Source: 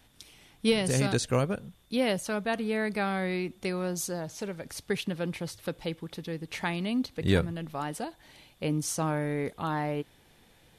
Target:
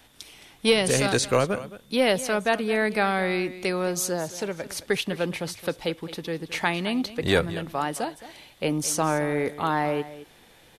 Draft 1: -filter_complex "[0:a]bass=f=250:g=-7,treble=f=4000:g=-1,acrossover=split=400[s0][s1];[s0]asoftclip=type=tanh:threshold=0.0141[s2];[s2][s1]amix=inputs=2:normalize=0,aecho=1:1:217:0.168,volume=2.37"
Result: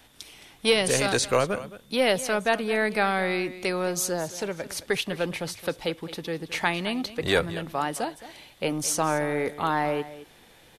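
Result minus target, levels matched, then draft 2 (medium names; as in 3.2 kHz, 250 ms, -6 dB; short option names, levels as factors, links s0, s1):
saturation: distortion +7 dB
-filter_complex "[0:a]bass=f=250:g=-7,treble=f=4000:g=-1,acrossover=split=400[s0][s1];[s0]asoftclip=type=tanh:threshold=0.0355[s2];[s2][s1]amix=inputs=2:normalize=0,aecho=1:1:217:0.168,volume=2.37"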